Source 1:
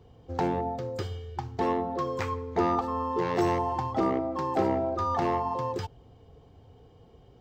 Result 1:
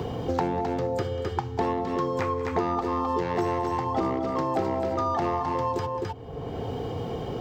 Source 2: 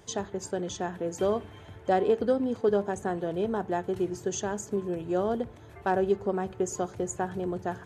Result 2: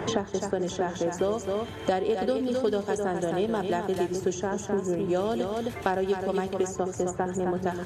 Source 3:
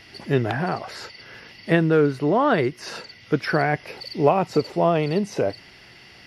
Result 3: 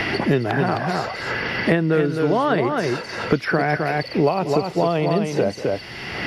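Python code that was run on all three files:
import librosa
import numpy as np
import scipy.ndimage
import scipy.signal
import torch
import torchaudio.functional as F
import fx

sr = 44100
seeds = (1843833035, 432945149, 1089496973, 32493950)

y = fx.echo_multitap(x, sr, ms=(189, 260), db=(-19.0, -6.5))
y = fx.band_squash(y, sr, depth_pct=100)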